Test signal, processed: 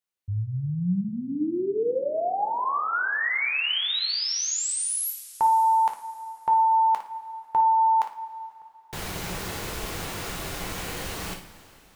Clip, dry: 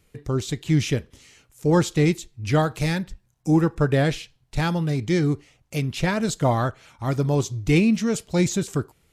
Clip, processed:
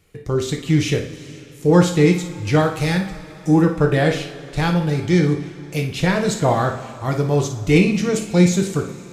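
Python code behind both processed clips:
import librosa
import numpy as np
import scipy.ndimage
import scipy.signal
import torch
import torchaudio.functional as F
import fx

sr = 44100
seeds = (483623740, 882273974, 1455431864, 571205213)

y = fx.bass_treble(x, sr, bass_db=-3, treble_db=-2)
y = fx.room_flutter(y, sr, wall_m=9.7, rt60_s=0.31)
y = fx.rev_double_slope(y, sr, seeds[0], early_s=0.32, late_s=3.5, knee_db=-18, drr_db=3.5)
y = y * librosa.db_to_amplitude(3.0)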